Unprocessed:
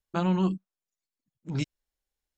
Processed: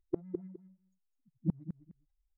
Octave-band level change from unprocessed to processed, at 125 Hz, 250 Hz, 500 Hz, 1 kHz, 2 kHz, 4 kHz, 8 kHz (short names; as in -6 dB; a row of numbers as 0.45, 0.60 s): -10.0 dB, -10.0 dB, -7.5 dB, under -25 dB, under -30 dB, under -40 dB, n/a